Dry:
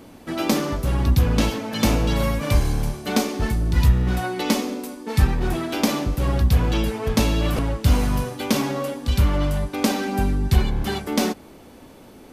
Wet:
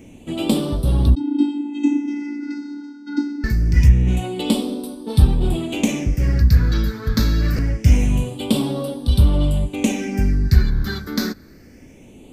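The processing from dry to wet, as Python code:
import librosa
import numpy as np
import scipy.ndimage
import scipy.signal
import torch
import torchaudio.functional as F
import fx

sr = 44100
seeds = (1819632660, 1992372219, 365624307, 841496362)

y = fx.vocoder(x, sr, bands=16, carrier='square', carrier_hz=289.0, at=(1.15, 3.44))
y = fx.phaser_stages(y, sr, stages=6, low_hz=720.0, high_hz=1900.0, hz=0.25, feedback_pct=45)
y = y * 10.0 ** (2.0 / 20.0)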